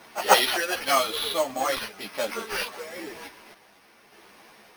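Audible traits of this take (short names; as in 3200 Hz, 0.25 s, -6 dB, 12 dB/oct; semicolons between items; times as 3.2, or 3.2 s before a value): aliases and images of a low sample rate 7400 Hz, jitter 0%; random-step tremolo 1.7 Hz; a shimmering, thickened sound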